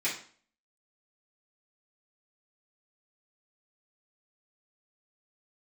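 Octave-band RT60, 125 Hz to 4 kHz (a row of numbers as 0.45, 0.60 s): 0.45, 0.50, 0.45, 0.45, 0.45, 0.40 s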